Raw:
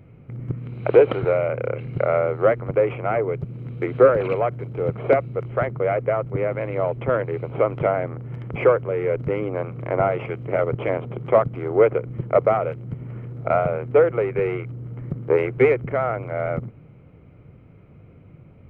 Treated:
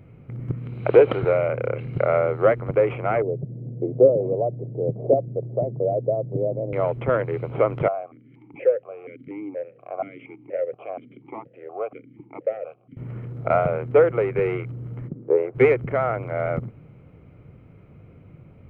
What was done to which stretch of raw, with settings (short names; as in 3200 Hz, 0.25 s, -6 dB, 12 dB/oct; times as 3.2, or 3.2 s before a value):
3.22–6.73 elliptic band-pass 120–650 Hz
7.88–12.97 vowel sequencer 4.2 Hz
15.07–15.54 band-pass 240 Hz -> 690 Hz, Q 1.5